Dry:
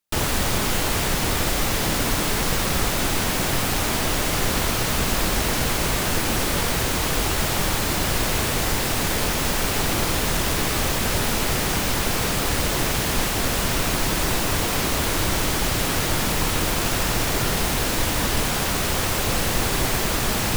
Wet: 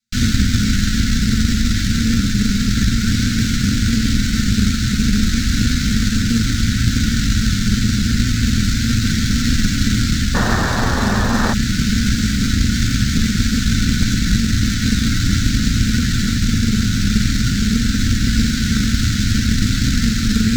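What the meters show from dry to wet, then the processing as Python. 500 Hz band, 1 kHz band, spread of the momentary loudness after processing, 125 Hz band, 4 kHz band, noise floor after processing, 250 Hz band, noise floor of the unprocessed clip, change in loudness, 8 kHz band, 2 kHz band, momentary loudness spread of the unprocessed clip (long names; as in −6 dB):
−7.5 dB, −4.0 dB, 1 LU, +10.5 dB, +3.0 dB, −19 dBFS, +11.5 dB, −24 dBFS, +4.5 dB, 0.0 dB, +1.5 dB, 0 LU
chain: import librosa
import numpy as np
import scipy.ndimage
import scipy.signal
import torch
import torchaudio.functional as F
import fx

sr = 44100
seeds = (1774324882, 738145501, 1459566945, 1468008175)

p1 = fx.tracing_dist(x, sr, depth_ms=0.13)
p2 = fx.high_shelf(p1, sr, hz=3500.0, db=-11.5)
p3 = fx.rev_fdn(p2, sr, rt60_s=0.6, lf_ratio=1.6, hf_ratio=0.3, size_ms=27.0, drr_db=-4.0)
p4 = fx.sample_hold(p3, sr, seeds[0], rate_hz=2500.0, jitter_pct=0)
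p5 = p3 + (p4 * 10.0 ** (-7.0 / 20.0))
p6 = fx.vibrato(p5, sr, rate_hz=6.2, depth_cents=53.0)
p7 = scipy.signal.sosfilt(scipy.signal.cheby1(5, 1.0, [280.0, 1400.0], 'bandstop', fs=sr, output='sos'), p6)
p8 = fx.spec_paint(p7, sr, seeds[1], shape='noise', start_s=10.34, length_s=1.2, low_hz=230.0, high_hz=1900.0, level_db=-19.0)
p9 = fx.band_shelf(p8, sr, hz=5300.0, db=11.5, octaves=1.3)
p10 = fx.rider(p9, sr, range_db=10, speed_s=0.5)
p11 = fx.cheby_harmonics(p10, sr, harmonics=(2,), levels_db=(-16,), full_scale_db=-2.5)
y = p11 * 10.0 ** (-1.5 / 20.0)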